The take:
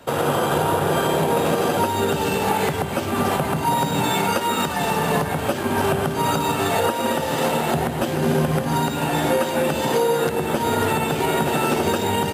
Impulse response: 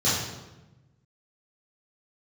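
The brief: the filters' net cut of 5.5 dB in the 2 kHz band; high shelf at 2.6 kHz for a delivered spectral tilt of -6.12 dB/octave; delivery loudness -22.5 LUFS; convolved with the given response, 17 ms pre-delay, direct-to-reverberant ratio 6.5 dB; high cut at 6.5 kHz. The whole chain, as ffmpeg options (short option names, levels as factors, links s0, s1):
-filter_complex "[0:a]lowpass=6500,equalizer=f=2000:t=o:g=-4.5,highshelf=f=2600:g=-6.5,asplit=2[s0][s1];[1:a]atrim=start_sample=2205,adelay=17[s2];[s1][s2]afir=irnorm=-1:irlink=0,volume=0.0891[s3];[s0][s3]amix=inputs=2:normalize=0,volume=0.794"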